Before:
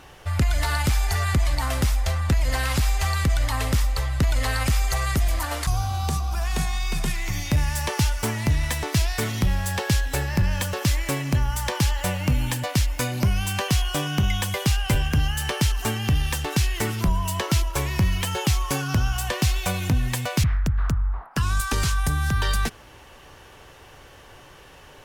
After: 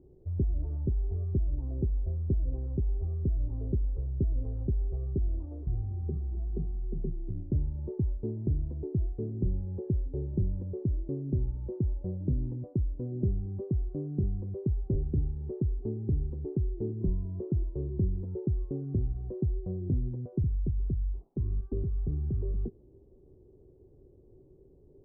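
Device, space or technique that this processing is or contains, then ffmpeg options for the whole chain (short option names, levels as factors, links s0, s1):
under water: -af "lowpass=f=400:w=0.5412,lowpass=f=400:w=1.3066,equalizer=f=380:t=o:w=0.32:g=10.5,volume=0.422"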